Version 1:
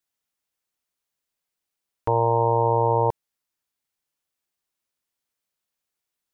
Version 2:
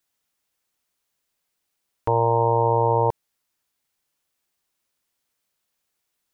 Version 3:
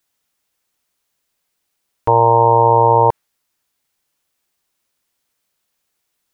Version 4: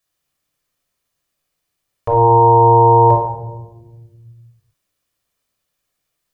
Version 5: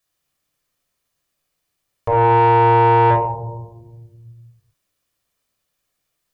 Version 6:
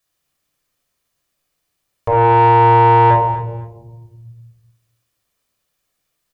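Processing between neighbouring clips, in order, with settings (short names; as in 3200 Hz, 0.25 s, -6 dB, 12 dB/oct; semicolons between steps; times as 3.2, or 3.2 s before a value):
limiter -16.5 dBFS, peak gain reduction 6 dB; gain +6.5 dB
dynamic EQ 1400 Hz, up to +7 dB, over -34 dBFS, Q 0.71; gain +5 dB
reverb RT60 1.2 s, pre-delay 20 ms, DRR 0.5 dB; gain -6 dB
soft clip -8 dBFS, distortion -14 dB
feedback echo 0.251 s, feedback 21%, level -15 dB; gain +2 dB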